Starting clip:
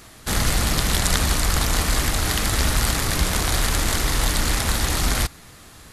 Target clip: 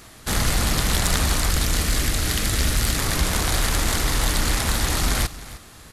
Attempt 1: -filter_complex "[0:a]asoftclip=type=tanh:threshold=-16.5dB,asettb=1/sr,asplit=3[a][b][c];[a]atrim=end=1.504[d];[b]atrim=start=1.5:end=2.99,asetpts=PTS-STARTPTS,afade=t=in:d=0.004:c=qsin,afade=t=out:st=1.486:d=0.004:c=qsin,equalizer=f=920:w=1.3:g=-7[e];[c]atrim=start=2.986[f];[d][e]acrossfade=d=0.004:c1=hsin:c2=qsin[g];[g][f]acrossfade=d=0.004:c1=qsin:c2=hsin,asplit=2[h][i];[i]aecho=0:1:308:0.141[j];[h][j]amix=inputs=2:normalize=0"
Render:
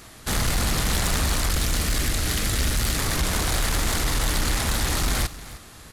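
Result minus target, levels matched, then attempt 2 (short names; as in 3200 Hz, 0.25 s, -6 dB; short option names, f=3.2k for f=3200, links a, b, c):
soft clip: distortion +12 dB
-filter_complex "[0:a]asoftclip=type=tanh:threshold=-7.5dB,asettb=1/sr,asplit=3[a][b][c];[a]atrim=end=1.504[d];[b]atrim=start=1.5:end=2.99,asetpts=PTS-STARTPTS,afade=t=in:d=0.004:c=qsin,afade=t=out:st=1.486:d=0.004:c=qsin,equalizer=f=920:w=1.3:g=-7[e];[c]atrim=start=2.986[f];[d][e]acrossfade=d=0.004:c1=hsin:c2=qsin[g];[g][f]acrossfade=d=0.004:c1=qsin:c2=hsin,asplit=2[h][i];[i]aecho=0:1:308:0.141[j];[h][j]amix=inputs=2:normalize=0"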